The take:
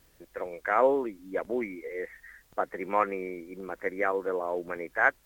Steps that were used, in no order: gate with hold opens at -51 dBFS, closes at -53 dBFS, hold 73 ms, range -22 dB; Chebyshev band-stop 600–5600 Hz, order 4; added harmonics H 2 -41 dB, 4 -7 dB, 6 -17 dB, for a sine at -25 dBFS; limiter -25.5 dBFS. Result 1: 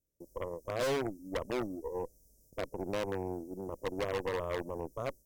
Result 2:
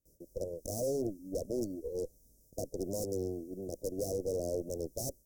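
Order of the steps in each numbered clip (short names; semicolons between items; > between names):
gate with hold > Chebyshev band-stop > added harmonics > limiter; added harmonics > gate with hold > Chebyshev band-stop > limiter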